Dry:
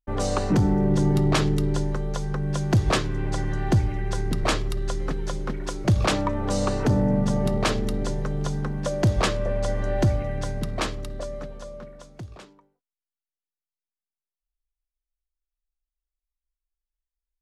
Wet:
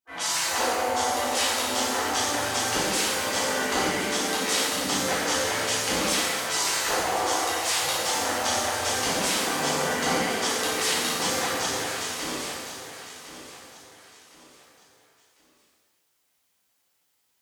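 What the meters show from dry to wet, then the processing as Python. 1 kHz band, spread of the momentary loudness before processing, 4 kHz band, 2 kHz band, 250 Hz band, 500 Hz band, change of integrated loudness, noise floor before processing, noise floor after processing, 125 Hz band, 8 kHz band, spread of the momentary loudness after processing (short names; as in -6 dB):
+5.5 dB, 13 LU, +9.5 dB, +8.0 dB, -7.5 dB, -1.0 dB, +0.5 dB, under -85 dBFS, -71 dBFS, -18.5 dB, +13.0 dB, 7 LU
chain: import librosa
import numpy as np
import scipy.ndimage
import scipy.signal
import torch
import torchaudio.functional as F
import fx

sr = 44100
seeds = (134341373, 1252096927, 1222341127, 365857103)

y = fx.diode_clip(x, sr, knee_db=-15.5)
y = fx.spec_gate(y, sr, threshold_db=-20, keep='weak')
y = fx.rider(y, sr, range_db=10, speed_s=0.5)
y = scipy.signal.sosfilt(scipy.signal.butter(2, 67.0, 'highpass', fs=sr, output='sos'), y)
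y = fx.echo_feedback(y, sr, ms=1057, feedback_pct=34, wet_db=-12.0)
y = fx.rev_shimmer(y, sr, seeds[0], rt60_s=1.3, semitones=7, shimmer_db=-8, drr_db=-9.5)
y = y * 10.0 ** (4.0 / 20.0)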